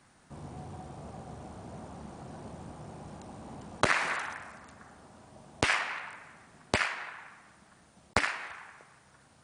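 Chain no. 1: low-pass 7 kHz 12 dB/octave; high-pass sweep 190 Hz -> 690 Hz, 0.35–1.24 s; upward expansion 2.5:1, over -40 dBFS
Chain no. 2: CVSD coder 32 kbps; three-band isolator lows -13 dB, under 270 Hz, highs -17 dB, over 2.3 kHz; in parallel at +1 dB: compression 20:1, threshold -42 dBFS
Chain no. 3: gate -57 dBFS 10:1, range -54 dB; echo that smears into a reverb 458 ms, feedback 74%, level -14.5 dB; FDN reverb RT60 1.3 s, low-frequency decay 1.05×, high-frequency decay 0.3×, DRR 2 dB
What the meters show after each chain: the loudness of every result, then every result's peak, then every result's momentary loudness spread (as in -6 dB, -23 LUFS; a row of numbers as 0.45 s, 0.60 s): -33.0 LUFS, -37.0 LUFS, -33.0 LUFS; -3.0 dBFS, -11.5 dBFS, -7.5 dBFS; 16 LU, 19 LU, 17 LU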